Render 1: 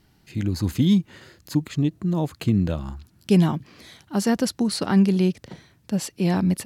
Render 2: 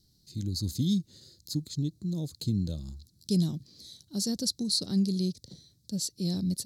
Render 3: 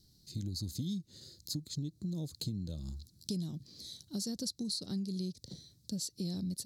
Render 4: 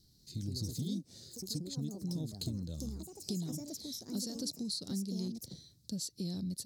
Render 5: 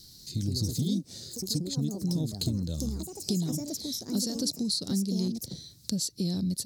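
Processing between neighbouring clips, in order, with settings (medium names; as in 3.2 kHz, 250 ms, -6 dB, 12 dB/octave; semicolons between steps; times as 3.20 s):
FFT filter 140 Hz 0 dB, 540 Hz -8 dB, 900 Hz -21 dB, 1.9 kHz -19 dB, 2.8 kHz -17 dB, 4 kHz +10 dB, 12 kHz +4 dB; trim -7 dB
compression 6:1, threshold -36 dBFS, peak gain reduction 13.5 dB; trim +1 dB
ever faster or slower copies 194 ms, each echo +4 st, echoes 2, each echo -6 dB; trim -1 dB
tape noise reduction on one side only encoder only; trim +8.5 dB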